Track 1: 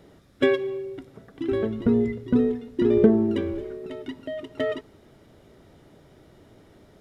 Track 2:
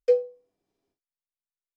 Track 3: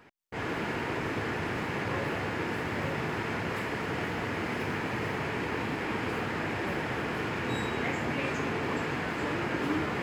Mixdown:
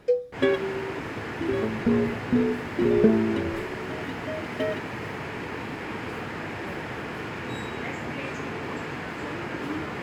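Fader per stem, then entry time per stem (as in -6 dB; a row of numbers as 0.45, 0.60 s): -2.0, -2.5, -1.5 dB; 0.00, 0.00, 0.00 s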